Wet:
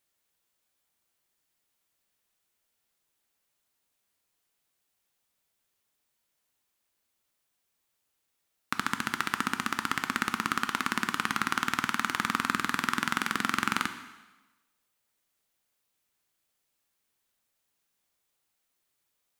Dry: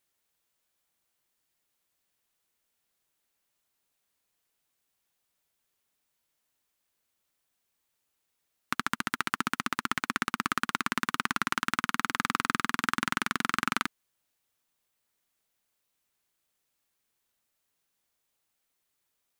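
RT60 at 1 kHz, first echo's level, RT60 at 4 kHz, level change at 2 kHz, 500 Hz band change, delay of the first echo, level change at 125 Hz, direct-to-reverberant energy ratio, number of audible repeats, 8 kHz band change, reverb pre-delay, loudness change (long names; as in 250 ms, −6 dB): 1.2 s, no echo audible, 1.1 s, +0.5 dB, +0.5 dB, no echo audible, +0.5 dB, 8.5 dB, no echo audible, +0.5 dB, 8 ms, +0.5 dB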